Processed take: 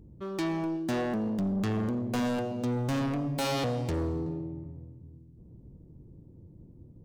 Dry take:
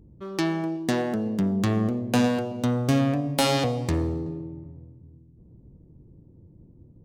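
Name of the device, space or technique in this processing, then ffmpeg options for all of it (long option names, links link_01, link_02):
saturation between pre-emphasis and de-emphasis: -af "highshelf=frequency=4300:gain=8.5,asoftclip=type=tanh:threshold=-26dB,highshelf=frequency=4300:gain=-8.5"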